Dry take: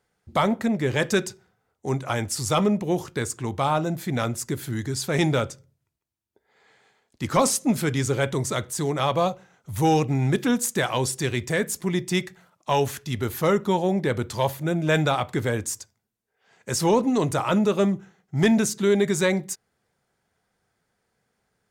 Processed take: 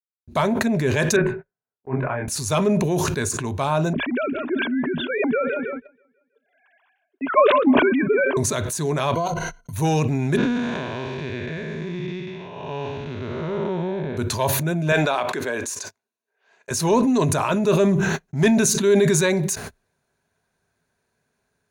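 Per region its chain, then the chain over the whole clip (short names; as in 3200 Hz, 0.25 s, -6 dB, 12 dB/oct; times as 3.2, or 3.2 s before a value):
1.16–2.28 elliptic band-pass 110–2100 Hz + doubler 24 ms -3 dB + upward expander 2.5:1, over -36 dBFS
3.93–8.37 sine-wave speech + warbling echo 0.161 s, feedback 51%, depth 103 cents, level -22 dB
9.14–9.73 ripple EQ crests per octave 1.9, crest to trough 18 dB + level quantiser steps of 12 dB
10.37–14.17 time blur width 0.401 s + LPF 4100 Hz 24 dB/oct
14.92–16.71 HPF 370 Hz + high shelf 6600 Hz -9.5 dB
whole clip: gate -48 dBFS, range -40 dB; ripple EQ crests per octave 1.5, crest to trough 7 dB; sustainer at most 23 dB/s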